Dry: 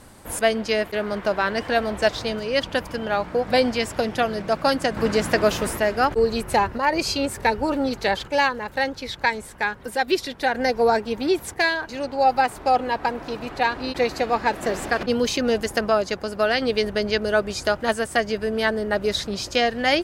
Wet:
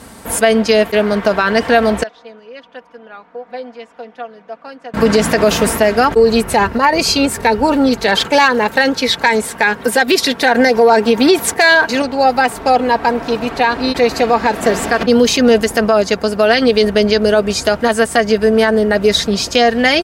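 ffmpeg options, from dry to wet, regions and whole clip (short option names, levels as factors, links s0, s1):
-filter_complex "[0:a]asettb=1/sr,asplit=3[s0][s1][s2];[s0]atrim=end=2.034[s3];[s1]atrim=start=2.03:end=4.94,asetpts=PTS-STARTPTS,afade=t=in:d=0.004:c=qsin,afade=t=out:st=2.906:d=0.004:c=qsin,lowpass=1000,aderivative,aecho=1:1:4.1:0.62,atrim=end_sample=128331[s4];[s2]atrim=start=4.936[s5];[s3][s4]acrossfade=d=0.004:c1=hsin:c2=qsin[s6];[s6][s5]acrossfade=d=0.004:c1=qsin:c2=hsin,asettb=1/sr,asplit=3[s7][s8][s9];[s7]atrim=end=8.084[s10];[s8]atrim=start=8.08:end=12.02,asetpts=PTS-STARTPTS,afade=t=in:d=0.004:c=qsin,afade=t=out:st=3.936:d=0.004:c=qsin,asoftclip=type=hard:threshold=0.299,highpass=f=180:p=1,acontrast=47[s11];[s9]atrim=start=12.016[s12];[s10][s11]acrossfade=d=0.004:c1=hsin:c2=qsin[s13];[s13][s12]acrossfade=d=0.004:c1=qsin:c2=hsin,highpass=56,aecho=1:1:4.4:0.43,alimiter=level_in=3.76:limit=0.891:release=50:level=0:latency=1,volume=0.891"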